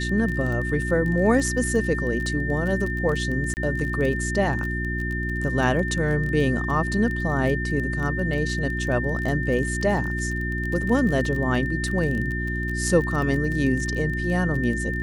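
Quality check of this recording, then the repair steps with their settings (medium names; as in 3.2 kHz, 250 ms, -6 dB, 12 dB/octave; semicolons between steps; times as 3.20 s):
crackle 21 per s -28 dBFS
hum 60 Hz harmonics 6 -28 dBFS
whine 1.8 kHz -29 dBFS
3.54–3.57 s: dropout 29 ms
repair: de-click; band-stop 1.8 kHz, Q 30; de-hum 60 Hz, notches 6; interpolate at 3.54 s, 29 ms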